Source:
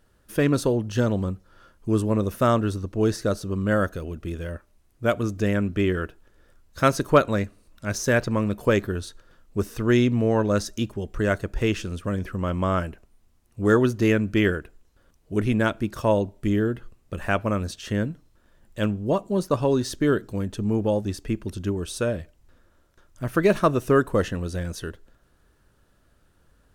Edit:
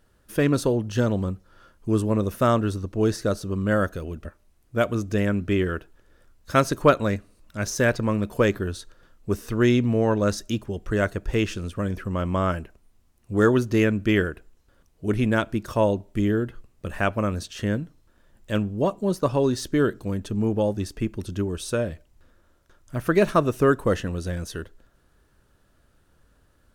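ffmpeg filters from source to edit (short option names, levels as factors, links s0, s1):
-filter_complex "[0:a]asplit=2[s0][s1];[s0]atrim=end=4.252[s2];[s1]atrim=start=4.528[s3];[s2][s3]acrossfade=d=0.004:c1=hsin:c2=hsin"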